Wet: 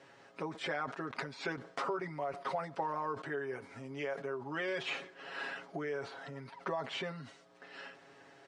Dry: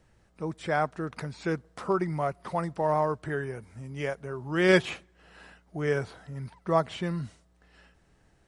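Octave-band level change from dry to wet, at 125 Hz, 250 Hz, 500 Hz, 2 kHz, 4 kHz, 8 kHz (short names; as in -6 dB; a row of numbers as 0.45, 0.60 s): -15.0, -12.5, -10.0, -6.5, -4.0, -9.0 dB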